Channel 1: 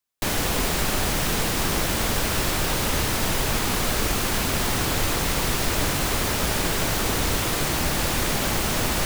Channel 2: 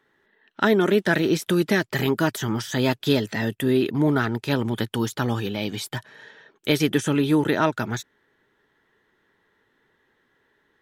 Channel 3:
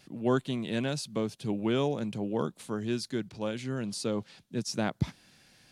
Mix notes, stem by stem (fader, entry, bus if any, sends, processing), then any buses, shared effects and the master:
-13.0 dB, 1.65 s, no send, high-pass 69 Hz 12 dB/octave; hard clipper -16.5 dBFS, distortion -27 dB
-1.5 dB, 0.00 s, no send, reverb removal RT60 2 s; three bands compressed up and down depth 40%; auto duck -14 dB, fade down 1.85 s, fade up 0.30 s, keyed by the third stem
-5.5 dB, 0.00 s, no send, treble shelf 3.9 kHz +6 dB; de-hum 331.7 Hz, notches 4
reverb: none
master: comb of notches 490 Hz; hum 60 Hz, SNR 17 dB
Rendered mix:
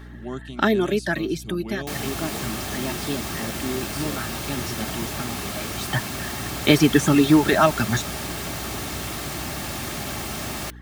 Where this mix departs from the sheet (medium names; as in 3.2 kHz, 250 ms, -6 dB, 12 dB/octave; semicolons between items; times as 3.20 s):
stem 1 -13.0 dB -> -5.0 dB; stem 2 -1.5 dB -> +7.0 dB